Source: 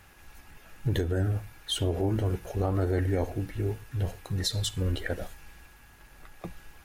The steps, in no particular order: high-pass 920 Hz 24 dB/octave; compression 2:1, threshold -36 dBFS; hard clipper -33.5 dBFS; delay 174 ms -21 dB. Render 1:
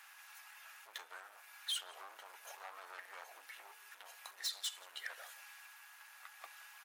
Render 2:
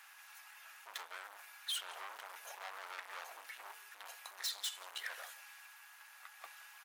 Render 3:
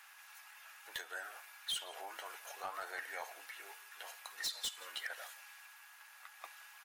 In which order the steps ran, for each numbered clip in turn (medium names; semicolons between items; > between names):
delay > compression > hard clipper > high-pass; delay > hard clipper > high-pass > compression; high-pass > compression > delay > hard clipper